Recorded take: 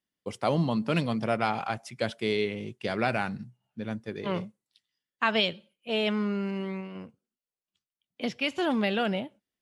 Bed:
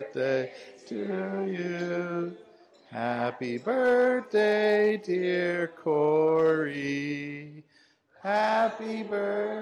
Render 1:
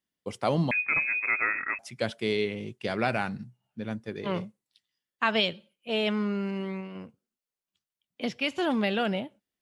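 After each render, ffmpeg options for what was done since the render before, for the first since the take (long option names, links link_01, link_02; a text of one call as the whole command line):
ffmpeg -i in.wav -filter_complex "[0:a]asettb=1/sr,asplit=3[link_01][link_02][link_03];[link_01]atrim=end=0.714[link_04];[link_02]atrim=start=0.71:end=1.79,asetpts=PTS-STARTPTS,afade=type=in:duration=0.004:curve=qsin,afade=type=out:start_time=1.076:duration=0.004:curve=qsin,lowpass=frequency=2300:width_type=q:width=0.5098,lowpass=frequency=2300:width_type=q:width=0.6013,lowpass=frequency=2300:width_type=q:width=0.9,lowpass=frequency=2300:width_type=q:width=2.563,afreqshift=-2700[link_05];[link_03]atrim=start=1.786[link_06];[link_04][link_05]acrossfade=duration=0.004:curve1=hsin:curve2=qsin[link_07];[link_07][link_06]acrossfade=duration=0.004:curve1=qsin:curve2=hsin" out.wav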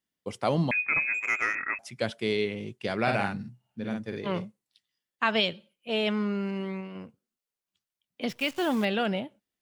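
ffmpeg -i in.wav -filter_complex "[0:a]asettb=1/sr,asplit=3[link_01][link_02][link_03];[link_01]atrim=end=1.144[link_04];[link_02]atrim=start=1.14:end=1.55,asetpts=PTS-STARTPTS,afade=type=in:duration=0.004:curve=qsin,afade=type=out:start_time=0.406:duration=0.004:curve=qsin,adynamicsmooth=sensitivity=2:basefreq=2500[link_05];[link_03]atrim=start=1.546[link_06];[link_04][link_05]acrossfade=duration=0.004:curve1=hsin:curve2=qsin[link_07];[link_07][link_06]acrossfade=duration=0.004:curve1=qsin:curve2=hsin,asettb=1/sr,asplit=3[link_08][link_09][link_10];[link_08]atrim=end=3.024[link_11];[link_09]atrim=start=3.02:end=4.2,asetpts=PTS-STARTPTS,afade=type=in:duration=0.004:curve=qsin,afade=type=out:start_time=1.176:duration=0.004:curve=qsin,asplit=2[link_12][link_13];[link_13]adelay=50,volume=-3.5dB[link_14];[link_12][link_14]amix=inputs=2:normalize=0,atrim=end_sample=52038[link_15];[link_10]atrim=start=4.196[link_16];[link_11][link_15]acrossfade=duration=0.004:curve1=hsin:curve2=qsin[link_17];[link_17][link_16]acrossfade=duration=0.004:curve1=qsin:curve2=hsin,asettb=1/sr,asplit=3[link_18][link_19][link_20];[link_18]atrim=end=8.294[link_21];[link_19]atrim=start=8.29:end=8.85,asetpts=PTS-STARTPTS,afade=type=in:duration=0.004:curve=qsin,afade=type=out:start_time=0.556:duration=0.004:curve=qsin,acrusher=bits=8:dc=4:mix=0:aa=0.000001[link_22];[link_20]atrim=start=8.846[link_23];[link_21][link_22]acrossfade=duration=0.004:curve1=hsin:curve2=qsin[link_24];[link_24][link_23]acrossfade=duration=0.004:curve1=qsin:curve2=hsin" out.wav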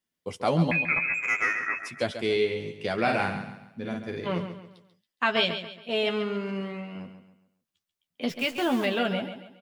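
ffmpeg -i in.wav -filter_complex "[0:a]asplit=2[link_01][link_02];[link_02]adelay=12,volume=-5.5dB[link_03];[link_01][link_03]amix=inputs=2:normalize=0,aecho=1:1:138|276|414|552:0.316|0.117|0.0433|0.016" out.wav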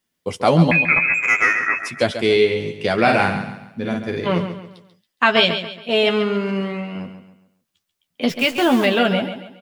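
ffmpeg -i in.wav -af "volume=9.5dB,alimiter=limit=-1dB:level=0:latency=1" out.wav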